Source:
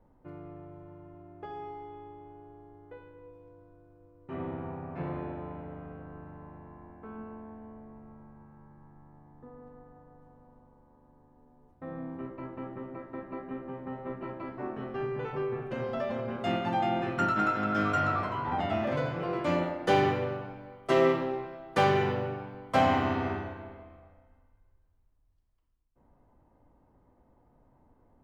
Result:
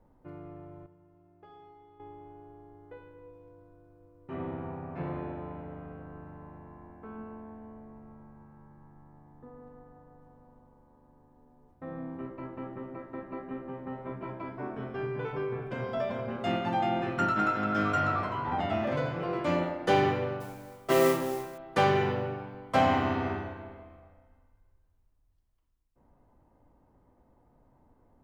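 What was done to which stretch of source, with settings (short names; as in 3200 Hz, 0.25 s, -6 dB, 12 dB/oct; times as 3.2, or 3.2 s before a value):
0.86–2 resonator 89 Hz, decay 0.98 s, mix 80%
14.01–16.28 ripple EQ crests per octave 1.7, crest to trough 8 dB
20.4–21.58 modulation noise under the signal 16 dB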